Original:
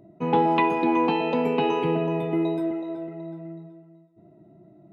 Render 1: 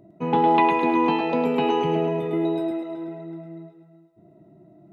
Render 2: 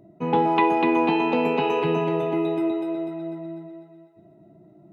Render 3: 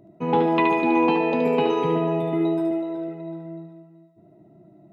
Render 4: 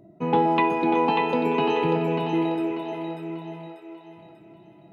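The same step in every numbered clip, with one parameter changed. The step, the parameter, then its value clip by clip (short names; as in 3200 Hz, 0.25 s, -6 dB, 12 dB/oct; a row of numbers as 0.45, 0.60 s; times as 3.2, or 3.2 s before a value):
thinning echo, time: 106, 246, 73, 591 ms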